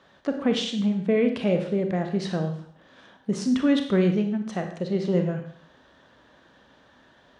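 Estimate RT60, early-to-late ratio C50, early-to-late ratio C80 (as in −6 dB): 0.60 s, 7.5 dB, 10.5 dB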